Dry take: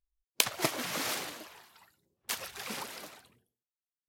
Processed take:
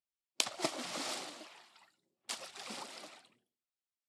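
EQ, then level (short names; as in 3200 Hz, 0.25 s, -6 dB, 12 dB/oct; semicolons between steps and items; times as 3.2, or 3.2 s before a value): dynamic EQ 2300 Hz, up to -6 dB, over -49 dBFS, Q 1; speaker cabinet 260–8600 Hz, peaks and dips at 450 Hz -8 dB, 1000 Hz -4 dB, 1600 Hz -6 dB, 6300 Hz -5 dB; -1.0 dB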